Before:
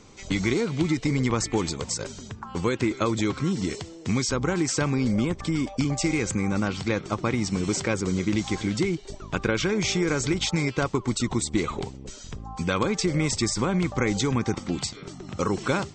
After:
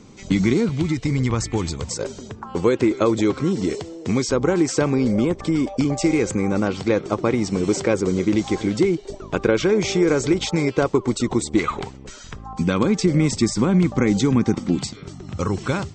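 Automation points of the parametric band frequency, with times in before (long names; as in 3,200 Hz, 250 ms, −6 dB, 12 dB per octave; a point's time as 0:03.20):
parametric band +9.5 dB 1.8 octaves
200 Hz
from 0:00.69 74 Hz
from 0:01.91 450 Hz
from 0:11.59 1,500 Hz
from 0:12.53 230 Hz
from 0:14.94 80 Hz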